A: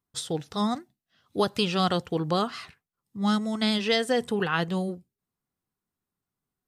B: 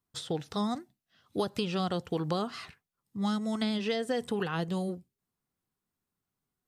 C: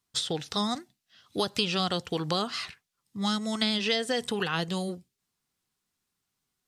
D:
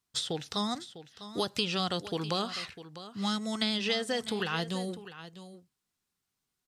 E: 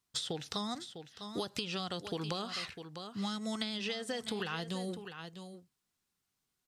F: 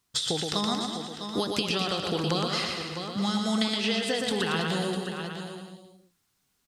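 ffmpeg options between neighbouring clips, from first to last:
ffmpeg -i in.wav -filter_complex "[0:a]acrossover=split=790|4200[link_01][link_02][link_03];[link_01]acompressor=threshold=-29dB:ratio=4[link_04];[link_02]acompressor=threshold=-39dB:ratio=4[link_05];[link_03]acompressor=threshold=-47dB:ratio=4[link_06];[link_04][link_05][link_06]amix=inputs=3:normalize=0" out.wav
ffmpeg -i in.wav -af "equalizer=frequency=4800:width=0.34:gain=11" out.wav
ffmpeg -i in.wav -af "aecho=1:1:651:0.2,volume=-3dB" out.wav
ffmpeg -i in.wav -af "acompressor=threshold=-33dB:ratio=10" out.wav
ffmpeg -i in.wav -af "aecho=1:1:120|228|325.2|412.7|491.4:0.631|0.398|0.251|0.158|0.1,volume=8dB" out.wav

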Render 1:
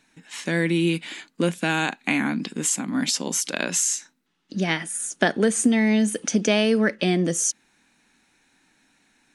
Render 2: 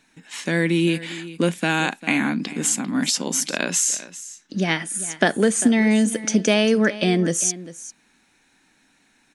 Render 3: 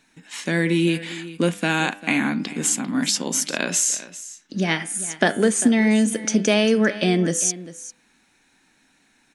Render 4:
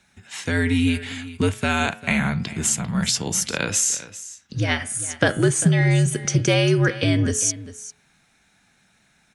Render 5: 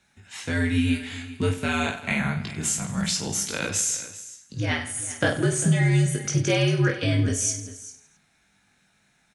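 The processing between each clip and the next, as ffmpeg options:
ffmpeg -i in.wav -af "aecho=1:1:397:0.158,volume=2dB" out.wav
ffmpeg -i in.wav -af "bandreject=frequency=100:width_type=h:width=4,bandreject=frequency=200:width_type=h:width=4,bandreject=frequency=300:width_type=h:width=4,bandreject=frequency=400:width_type=h:width=4,bandreject=frequency=500:width_type=h:width=4,bandreject=frequency=600:width_type=h:width=4,bandreject=frequency=700:width_type=h:width=4,bandreject=frequency=800:width_type=h:width=4,bandreject=frequency=900:width_type=h:width=4,bandreject=frequency=1000:width_type=h:width=4,bandreject=frequency=1100:width_type=h:width=4,bandreject=frequency=1200:width_type=h:width=4,bandreject=frequency=1300:width_type=h:width=4,bandreject=frequency=1400:width_type=h:width=4,bandreject=frequency=1500:width_type=h:width=4,bandreject=frequency=1600:width_type=h:width=4,bandreject=frequency=1700:width_type=h:width=4,bandreject=frequency=1800:width_type=h:width=4,bandreject=frequency=1900:width_type=h:width=4,bandreject=frequency=2000:width_type=h:width=4,bandreject=frequency=2100:width_type=h:width=4,bandreject=frequency=2200:width_type=h:width=4,bandreject=frequency=2300:width_type=h:width=4,bandreject=frequency=2400:width_type=h:width=4,bandreject=frequency=2500:width_type=h:width=4,bandreject=frequency=2600:width_type=h:width=4,bandreject=frequency=2700:width_type=h:width=4,bandreject=frequency=2800:width_type=h:width=4,bandreject=frequency=2900:width_type=h:width=4,bandreject=frequency=3000:width_type=h:width=4,bandreject=frequency=3100:width_type=h:width=4,bandreject=frequency=3200:width_type=h:width=4,bandreject=frequency=3300:width_type=h:width=4,bandreject=frequency=3400:width_type=h:width=4,bandreject=frequency=3500:width_type=h:width=4,bandreject=frequency=3600:width_type=h:width=4" out.wav
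ffmpeg -i in.wav -af "afreqshift=-75" out.wav
ffmpeg -i in.wav -af "aecho=1:1:20|50|95|162.5|263.8:0.631|0.398|0.251|0.158|0.1,volume=-6dB" out.wav

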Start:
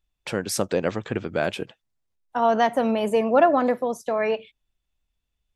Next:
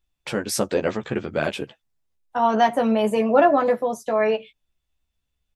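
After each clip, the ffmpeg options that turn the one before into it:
ffmpeg -i in.wav -filter_complex "[0:a]asplit=2[link_01][link_02];[link_02]adelay=14,volume=-4dB[link_03];[link_01][link_03]amix=inputs=2:normalize=0" out.wav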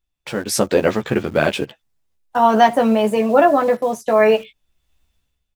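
ffmpeg -i in.wav -filter_complex "[0:a]dynaudnorm=framelen=110:gausssize=9:maxgain=16.5dB,asplit=2[link_01][link_02];[link_02]acrusher=bits=4:mix=0:aa=0.000001,volume=-12dB[link_03];[link_01][link_03]amix=inputs=2:normalize=0,volume=-2.5dB" out.wav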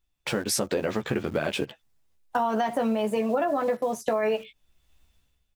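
ffmpeg -i in.wav -af "alimiter=limit=-7dB:level=0:latency=1:release=36,acompressor=threshold=-26dB:ratio=4,volume=1.5dB" out.wav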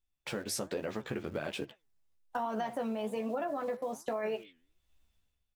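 ffmpeg -i in.wav -af "flanger=delay=2.8:depth=9.8:regen=87:speed=1.2:shape=triangular,volume=-5dB" out.wav

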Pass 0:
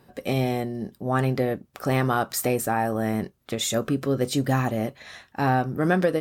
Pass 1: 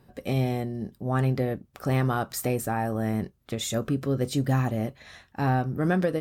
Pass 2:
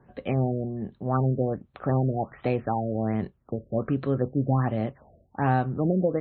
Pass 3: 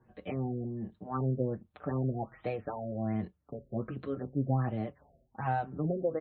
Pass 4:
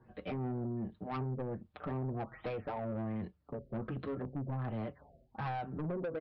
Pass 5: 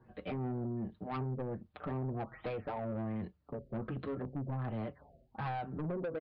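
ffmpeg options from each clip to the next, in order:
ffmpeg -i in.wav -af "lowshelf=frequency=150:gain=10.5,volume=-5dB" out.wav
ffmpeg -i in.wav -filter_complex "[0:a]acrossover=split=110|1200[link_01][link_02][link_03];[link_02]crystalizer=i=9:c=0[link_04];[link_01][link_04][link_03]amix=inputs=3:normalize=0,afftfilt=real='re*lt(b*sr/1024,660*pow(4400/660,0.5+0.5*sin(2*PI*1.3*pts/sr)))':imag='im*lt(b*sr/1024,660*pow(4400/660,0.5+0.5*sin(2*PI*1.3*pts/sr)))':win_size=1024:overlap=0.75" out.wav
ffmpeg -i in.wav -filter_complex "[0:a]asplit=2[link_01][link_02];[link_02]adelay=5.8,afreqshift=-1.3[link_03];[link_01][link_03]amix=inputs=2:normalize=1,volume=-5dB" out.wav
ffmpeg -i in.wav -af "acompressor=threshold=-31dB:ratio=16,aresample=11025,asoftclip=type=tanh:threshold=-36dB,aresample=44100,volume=3dB" out.wav
ffmpeg -i in.wav -af "aresample=11025,aresample=44100" out.wav

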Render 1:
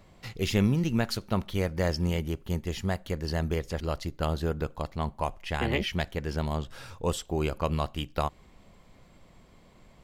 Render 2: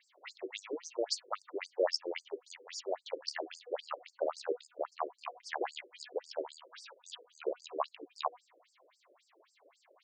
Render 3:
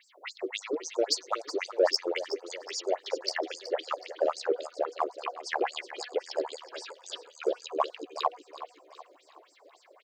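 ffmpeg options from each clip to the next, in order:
ffmpeg -i in.wav -af "bandreject=frequency=244.5:width_type=h:width=4,bandreject=frequency=489:width_type=h:width=4,bandreject=frequency=733.5:width_type=h:width=4,bandreject=frequency=978:width_type=h:width=4,bandreject=frequency=1222.5:width_type=h:width=4,bandreject=frequency=1467:width_type=h:width=4,bandreject=frequency=1711.5:width_type=h:width=4,bandreject=frequency=1956:width_type=h:width=4,bandreject=frequency=2200.5:width_type=h:width=4,bandreject=frequency=2445:width_type=h:width=4,bandreject=frequency=2689.5:width_type=h:width=4,bandreject=frequency=2934:width_type=h:width=4,bandreject=frequency=3178.5:width_type=h:width=4,bandreject=frequency=3423:width_type=h:width=4,bandreject=frequency=3667.5:width_type=h:width=4,bandreject=frequency=3912:width_type=h:width=4,bandreject=frequency=4156.5:width_type=h:width=4,bandreject=frequency=4401:width_type=h:width=4,afftfilt=real='re*between(b*sr/1024,420*pow(6600/420,0.5+0.5*sin(2*PI*3.7*pts/sr))/1.41,420*pow(6600/420,0.5+0.5*sin(2*PI*3.7*pts/sr))*1.41)':imag='im*between(b*sr/1024,420*pow(6600/420,0.5+0.5*sin(2*PI*3.7*pts/sr))/1.41,420*pow(6600/420,0.5+0.5*sin(2*PI*3.7*pts/sr))*1.41)':win_size=1024:overlap=0.75,volume=2dB" out.wav
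ffmpeg -i in.wav -filter_complex "[0:a]asplit=2[link_01][link_02];[link_02]asoftclip=type=tanh:threshold=-32dB,volume=-9.5dB[link_03];[link_01][link_03]amix=inputs=2:normalize=0,aecho=1:1:372|744|1116|1488:0.211|0.093|0.0409|0.018,volume=5.5dB" out.wav

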